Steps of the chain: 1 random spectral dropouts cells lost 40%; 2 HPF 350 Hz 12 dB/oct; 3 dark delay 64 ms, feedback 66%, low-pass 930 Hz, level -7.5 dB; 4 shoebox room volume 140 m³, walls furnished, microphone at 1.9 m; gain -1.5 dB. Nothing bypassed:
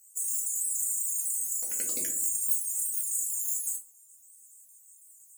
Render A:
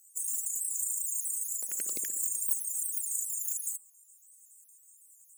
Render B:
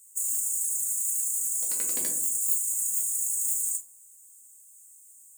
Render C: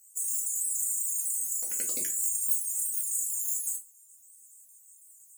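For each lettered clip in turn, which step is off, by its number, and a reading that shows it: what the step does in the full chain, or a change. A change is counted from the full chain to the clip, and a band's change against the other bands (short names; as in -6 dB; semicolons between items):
4, 500 Hz band -3.0 dB; 1, 4 kHz band +1.5 dB; 3, 250 Hz band -2.5 dB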